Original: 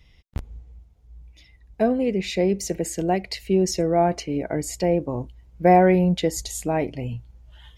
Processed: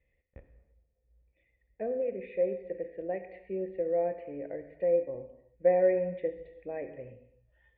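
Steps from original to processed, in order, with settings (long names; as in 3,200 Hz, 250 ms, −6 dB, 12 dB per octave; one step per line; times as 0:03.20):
formant resonators in series e
reverb whose tail is shaped and stops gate 360 ms falling, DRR 7.5 dB
level −2.5 dB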